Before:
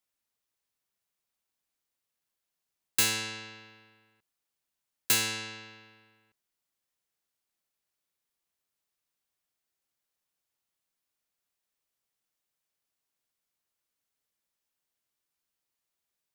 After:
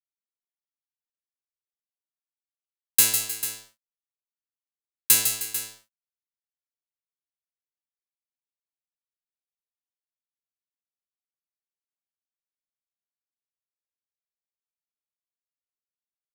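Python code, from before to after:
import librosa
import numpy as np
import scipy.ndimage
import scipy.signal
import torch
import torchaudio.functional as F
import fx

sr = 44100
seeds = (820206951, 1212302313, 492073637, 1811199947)

y = fx.peak_eq(x, sr, hz=12000.0, db=14.5, octaves=1.4)
y = np.sign(y) * np.maximum(np.abs(y) - 10.0 ** (-29.5 / 20.0), 0.0)
y = fx.echo_multitap(y, sr, ms=(153, 310, 444), db=(-7.5, -15.0, -12.0))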